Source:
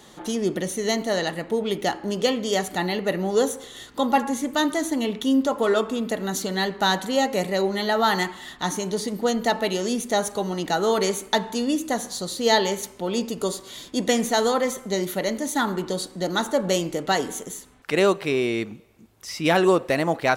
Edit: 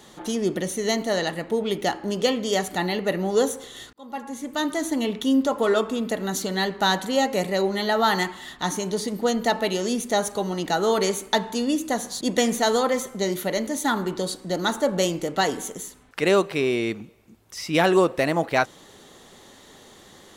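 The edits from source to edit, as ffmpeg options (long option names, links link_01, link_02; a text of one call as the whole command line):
ffmpeg -i in.wav -filter_complex "[0:a]asplit=3[link_01][link_02][link_03];[link_01]atrim=end=3.93,asetpts=PTS-STARTPTS,afade=type=out:start_time=3.926:duration=0.004:curve=hsin[link_04];[link_02]atrim=start=3.93:end=12.212,asetpts=PTS-STARTPTS,afade=type=in:duration=1.02[link_05];[link_03]atrim=start=13.918[link_06];[link_04][link_05]concat=n=2:v=0:a=1[link_07];[link_07][link_06]acrossfade=duration=0.004:curve1=hsin:curve2=hsin" out.wav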